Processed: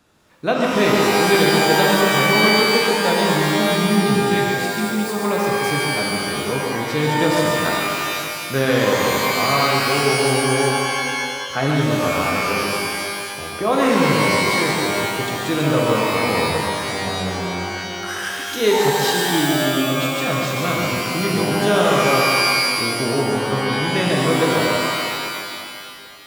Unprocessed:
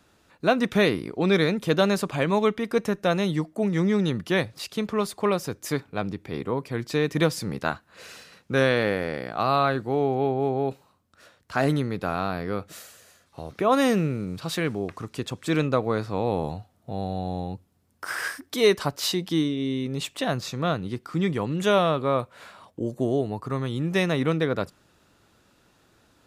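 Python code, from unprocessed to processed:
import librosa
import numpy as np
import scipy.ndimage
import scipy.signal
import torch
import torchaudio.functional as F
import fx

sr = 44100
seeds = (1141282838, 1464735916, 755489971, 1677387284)

y = x + 10.0 ** (-5.5 / 20.0) * np.pad(x, (int(140 * sr / 1000.0), 0))[:len(x)]
y = fx.spec_erase(y, sr, start_s=3.62, length_s=1.46, low_hz=280.0, high_hz=1800.0)
y = fx.rev_shimmer(y, sr, seeds[0], rt60_s=2.3, semitones=12, shimmer_db=-2, drr_db=-0.5)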